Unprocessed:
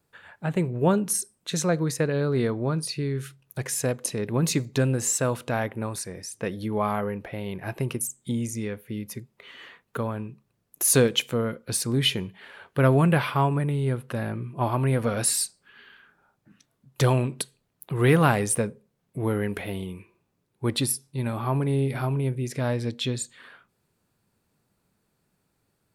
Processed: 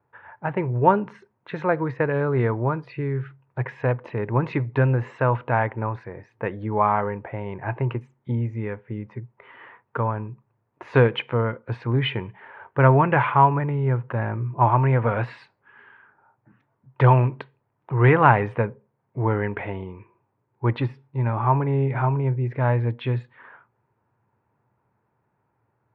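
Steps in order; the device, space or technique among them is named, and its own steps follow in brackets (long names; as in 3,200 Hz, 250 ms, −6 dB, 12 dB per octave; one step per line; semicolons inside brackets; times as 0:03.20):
dynamic equaliser 2,800 Hz, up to +7 dB, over −43 dBFS, Q 0.8
bass cabinet (loudspeaker in its box 79–2,000 Hz, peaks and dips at 120 Hz +8 dB, 170 Hz −9 dB, 250 Hz −4 dB, 920 Hz +10 dB)
level +2 dB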